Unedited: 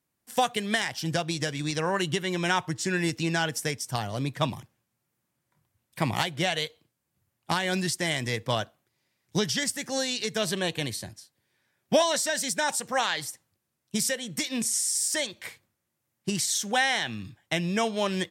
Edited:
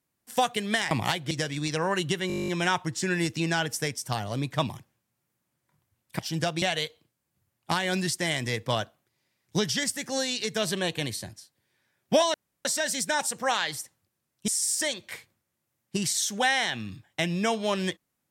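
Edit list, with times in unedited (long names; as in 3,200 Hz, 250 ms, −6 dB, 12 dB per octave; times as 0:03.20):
0:00.91–0:01.34: swap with 0:06.02–0:06.42
0:02.31: stutter 0.02 s, 11 plays
0:12.14: splice in room tone 0.31 s
0:13.97–0:14.81: remove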